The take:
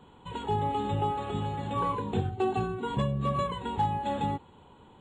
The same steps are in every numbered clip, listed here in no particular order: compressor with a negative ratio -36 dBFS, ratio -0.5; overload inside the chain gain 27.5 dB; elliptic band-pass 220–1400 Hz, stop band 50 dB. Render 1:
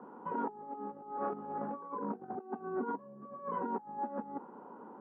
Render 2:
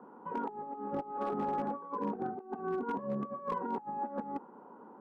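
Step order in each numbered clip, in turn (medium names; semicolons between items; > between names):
compressor with a negative ratio > overload inside the chain > elliptic band-pass; elliptic band-pass > compressor with a negative ratio > overload inside the chain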